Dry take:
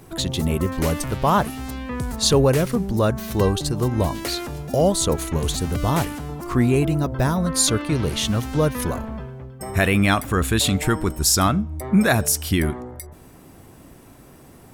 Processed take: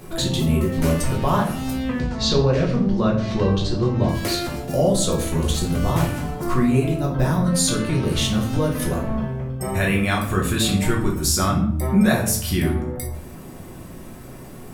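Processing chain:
0:01.99–0:04.09: low-pass filter 5,500 Hz 24 dB per octave
downward compressor 2 to 1, threshold −30 dBFS, peak gain reduction 10 dB
rectangular room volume 86 cubic metres, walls mixed, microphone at 0.97 metres
level +2.5 dB

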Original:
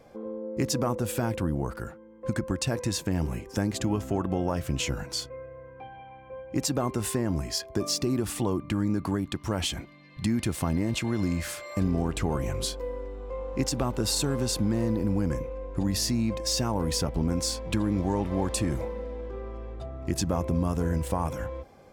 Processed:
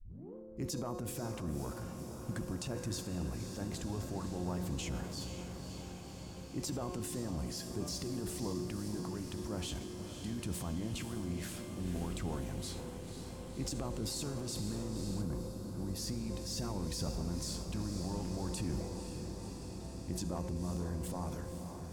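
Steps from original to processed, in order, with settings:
turntable start at the beginning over 0.35 s
dynamic equaliser 2,100 Hz, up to −4 dB, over −48 dBFS, Q 0.74
tuned comb filter 180 Hz, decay 1.1 s, mix 80%
harmonic and percussive parts rebalanced harmonic −8 dB
transient designer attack −5 dB, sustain +7 dB
low-shelf EQ 230 Hz +5.5 dB
on a send: feedback delay with all-pass diffusion 526 ms, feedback 77%, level −8 dB
on the sum: gain on a spectral selection 0:15.21–0:15.97, 1,600–9,700 Hz −6 dB
level +2.5 dB

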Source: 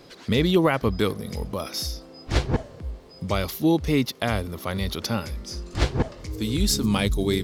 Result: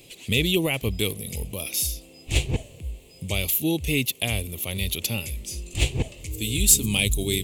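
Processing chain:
drawn EQ curve 120 Hz 0 dB, 220 Hz −6 dB, 380 Hz −4 dB, 740 Hz −8 dB, 1,500 Hz −19 dB, 2,600 Hz +11 dB, 5,200 Hz −5 dB, 7,400 Hz +13 dB

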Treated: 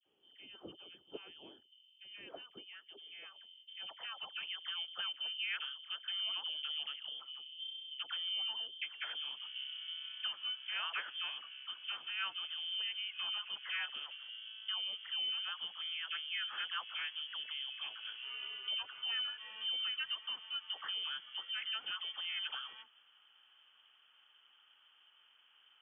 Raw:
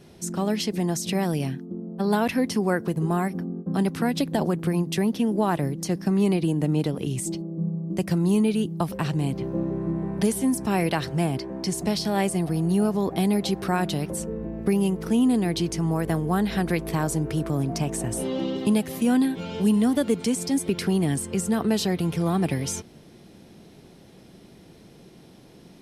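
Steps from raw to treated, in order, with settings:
voice inversion scrambler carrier 3,300 Hz
all-pass dispersion lows, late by 61 ms, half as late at 1,400 Hz
band-pass filter sweep 360 Hz → 1,400 Hz, 0:02.79–0:04.74
level −5.5 dB

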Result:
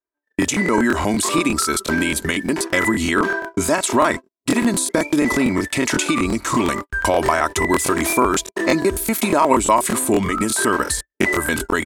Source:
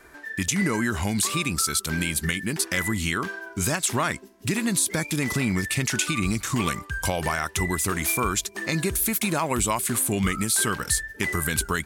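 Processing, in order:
low-shelf EQ 370 Hz +5.5 dB
comb filter 3.1 ms, depth 42%
downward compressor 20 to 1, threshold −22 dBFS, peak gain reduction 7 dB
octave-band graphic EQ 125/250/500/1,000/2,000/4,000/8,000 Hz −5/+8/+12/+11/+5/+4/+5 dB
noise gate −23 dBFS, range −56 dB
regular buffer underruns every 0.12 s, samples 1,024, repeat, from 0:00.40

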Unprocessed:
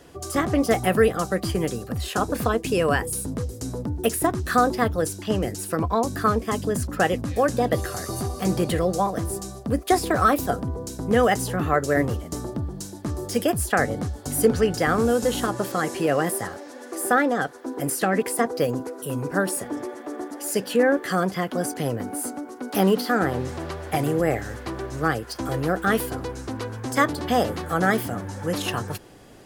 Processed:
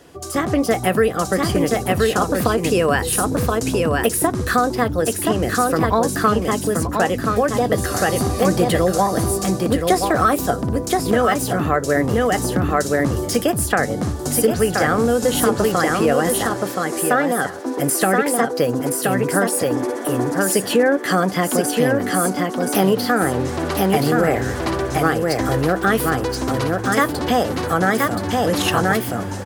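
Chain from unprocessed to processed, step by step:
on a send: single-tap delay 1,025 ms −4.5 dB
on the sum: automatic gain control
low-shelf EQ 66 Hz −7.5 dB
downward compressor 2 to 1, threshold −19 dBFS, peak gain reduction 7 dB
level +2.5 dB

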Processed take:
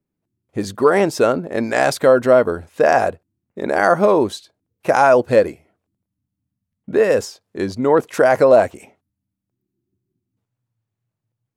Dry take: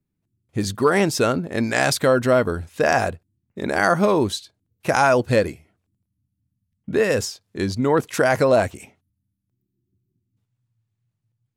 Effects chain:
drawn EQ curve 110 Hz 0 dB, 560 Hz +12 dB, 3,600 Hz +2 dB
level −5.5 dB

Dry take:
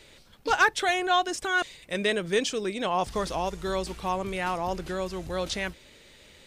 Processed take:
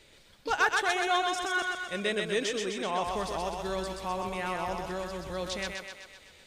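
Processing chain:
feedback echo with a high-pass in the loop 127 ms, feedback 60%, high-pass 370 Hz, level −3 dB
level −5 dB

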